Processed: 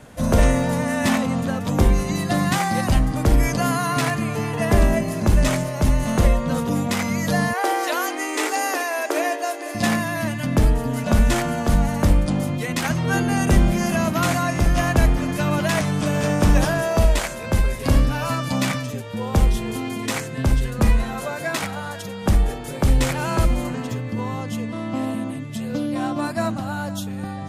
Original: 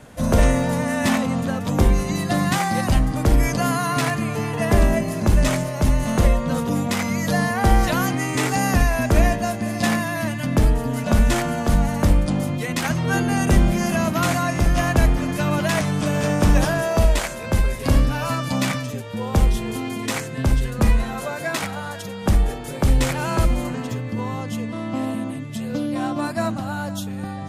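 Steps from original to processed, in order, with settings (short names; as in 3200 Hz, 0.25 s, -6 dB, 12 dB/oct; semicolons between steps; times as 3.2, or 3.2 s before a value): 7.53–9.75 brick-wall FIR high-pass 280 Hz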